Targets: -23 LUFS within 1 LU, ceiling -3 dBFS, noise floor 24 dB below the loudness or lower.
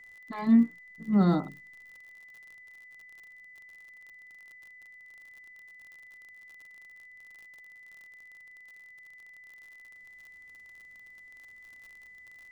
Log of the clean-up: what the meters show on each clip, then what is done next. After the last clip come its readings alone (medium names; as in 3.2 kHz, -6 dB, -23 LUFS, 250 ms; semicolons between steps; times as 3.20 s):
tick rate 53 per s; steady tone 2 kHz; tone level -49 dBFS; loudness -26.5 LUFS; peak level -13.0 dBFS; loudness target -23.0 LUFS
-> de-click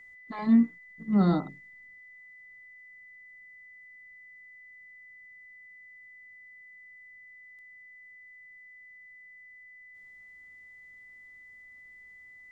tick rate 0.16 per s; steady tone 2 kHz; tone level -49 dBFS
-> band-stop 2 kHz, Q 30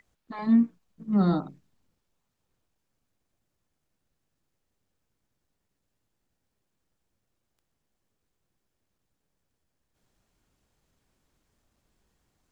steady tone not found; loudness -25.5 LUFS; peak level -13.0 dBFS; loudness target -23.0 LUFS
-> trim +2.5 dB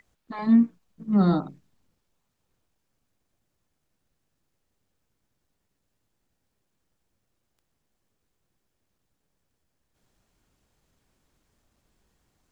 loudness -23.0 LUFS; peak level -10.5 dBFS; noise floor -78 dBFS